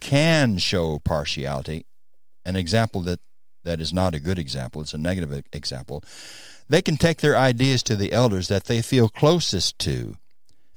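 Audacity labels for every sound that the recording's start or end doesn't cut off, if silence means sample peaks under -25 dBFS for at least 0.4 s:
2.470000	3.150000	sound
3.670000	5.970000	sound
6.710000	10.110000	sound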